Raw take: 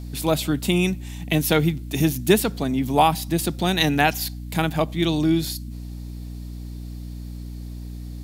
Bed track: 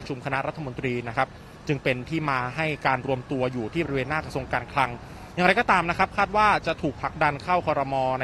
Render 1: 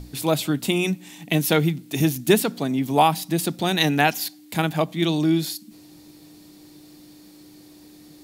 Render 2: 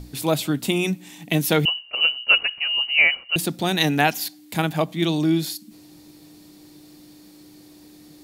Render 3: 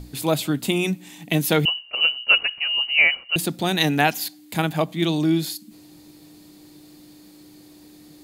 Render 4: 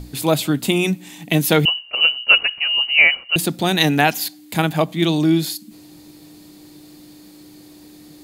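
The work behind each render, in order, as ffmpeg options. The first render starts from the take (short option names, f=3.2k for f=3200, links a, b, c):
-af "bandreject=f=60:t=h:w=6,bandreject=f=120:t=h:w=6,bandreject=f=180:t=h:w=6,bandreject=f=240:t=h:w=6"
-filter_complex "[0:a]asettb=1/sr,asplit=3[a][b][c];[a]atrim=end=1.654[d];[b]atrim=start=1.65:end=3.36,asetpts=PTS-STARTPTS,afade=t=in:d=0.004:c=qsin,afade=t=out:st=1.706:d=0.004:c=qsin,lowpass=f=2.6k:t=q:w=0.5098,lowpass=f=2.6k:t=q:w=0.6013,lowpass=f=2.6k:t=q:w=0.9,lowpass=f=2.6k:t=q:w=2.563,afreqshift=-3100[e];[c]atrim=start=3.356[f];[d][e]acrossfade=d=0.004:c1=hsin:c2=qsin[g];[g][f]acrossfade=d=0.004:c1=qsin:c2=hsin"
-af "bandreject=f=5.6k:w=17"
-af "volume=4dB,alimiter=limit=-1dB:level=0:latency=1"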